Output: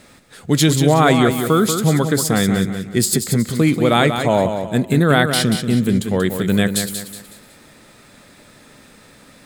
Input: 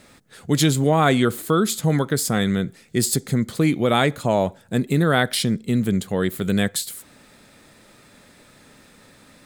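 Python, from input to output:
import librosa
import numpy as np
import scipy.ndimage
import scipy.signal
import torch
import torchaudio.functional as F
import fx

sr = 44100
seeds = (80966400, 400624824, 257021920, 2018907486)

y = fx.echo_feedback(x, sr, ms=185, feedback_pct=37, wet_db=-7.5)
y = y * 10.0 ** (3.5 / 20.0)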